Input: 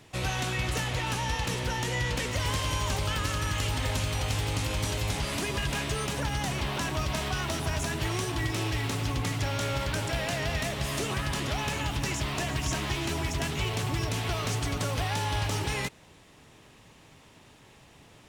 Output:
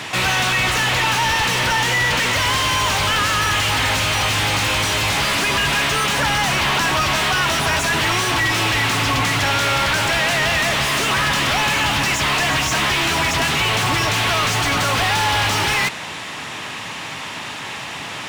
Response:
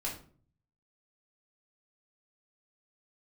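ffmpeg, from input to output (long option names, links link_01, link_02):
-filter_complex "[0:a]highpass=60,equalizer=frequency=450:width_type=o:width=1.4:gain=-8.5,asplit=2[link_01][link_02];[link_02]highpass=frequency=720:poles=1,volume=31dB,asoftclip=type=tanh:threshold=-18dB[link_03];[link_01][link_03]amix=inputs=2:normalize=0,lowpass=frequency=2900:poles=1,volume=-6dB,volume=8dB"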